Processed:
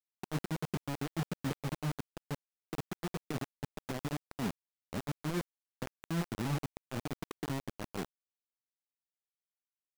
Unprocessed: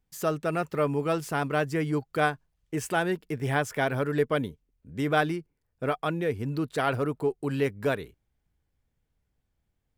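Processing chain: compressor with a negative ratio -32 dBFS, ratio -0.5; ladder band-pass 210 Hz, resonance 40%; bit crusher 7-bit; trim +6 dB

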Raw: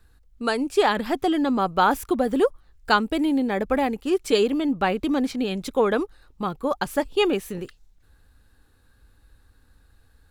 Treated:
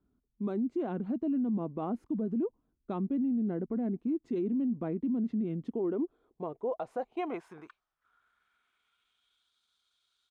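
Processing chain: band-pass sweep 290 Hz -> 4.7 kHz, 5.60–9.57 s; peak limiter -25.5 dBFS, peak gain reduction 9.5 dB; pitch shift -2.5 st

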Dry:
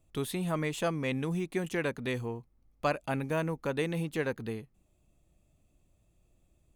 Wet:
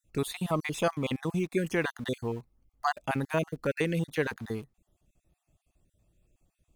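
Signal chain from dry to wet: random holes in the spectrogram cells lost 33%; in parallel at -5 dB: small samples zeroed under -45 dBFS

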